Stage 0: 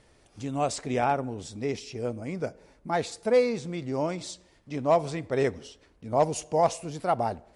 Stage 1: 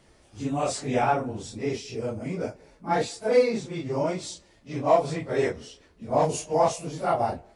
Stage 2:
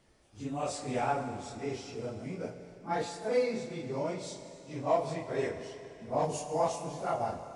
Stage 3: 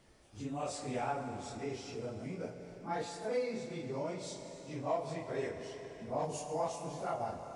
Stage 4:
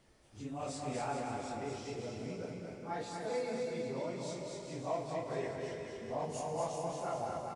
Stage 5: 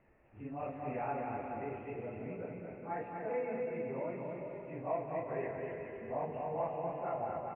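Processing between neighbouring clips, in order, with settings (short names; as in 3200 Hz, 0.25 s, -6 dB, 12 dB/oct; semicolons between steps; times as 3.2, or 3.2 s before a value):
phase scrambler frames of 0.1 s; gain +2 dB
Schroeder reverb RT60 2.9 s, combs from 31 ms, DRR 8 dB; gain -8 dB
compressor 1.5:1, threshold -48 dBFS, peak gain reduction 9.5 dB; gain +2 dB
bouncing-ball echo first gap 0.24 s, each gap 0.75×, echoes 5; gain -2.5 dB
rippled Chebyshev low-pass 2700 Hz, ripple 3 dB; gain +1 dB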